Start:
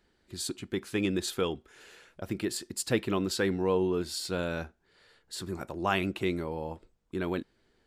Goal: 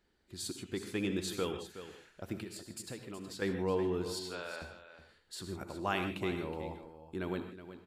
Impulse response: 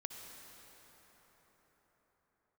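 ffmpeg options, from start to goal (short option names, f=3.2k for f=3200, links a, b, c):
-filter_complex "[0:a]asettb=1/sr,asplit=3[a][b][c];[a]atrim=end=2.424[d];[b]atrim=start=2.42:end=3.42,asetpts=PTS-STARTPTS,afade=t=in:d=0.004:c=qsin,afade=t=out:st=0.996:d=0.004:c=qsin,acompressor=threshold=-37dB:ratio=6[e];[c]atrim=start=3.416[f];[d][e]acrossfade=d=0.004:c1=hsin:c2=qsin[g];[g][f]acrossfade=d=0.004:c1=qsin:c2=hsin,asettb=1/sr,asplit=3[h][i][j];[h]atrim=end=4.194[k];[i]atrim=start=4.19:end=4.62,asetpts=PTS-STARTPTS,afade=t=in:d=0.004:c=qsin,afade=t=out:st=0.426:d=0.004:c=qsin,highpass=720,lowpass=4.7k[l];[j]atrim=start=4.616[m];[k][l]acrossfade=d=0.004:c1=hsin:c2=qsin[n];[n][m]acrossfade=d=0.004:c1=qsin:c2=hsin,aecho=1:1:370:0.237[o];[1:a]atrim=start_sample=2205,afade=t=out:st=0.21:d=0.01,atrim=end_sample=9702[p];[o][p]afir=irnorm=-1:irlink=0,volume=-1.5dB"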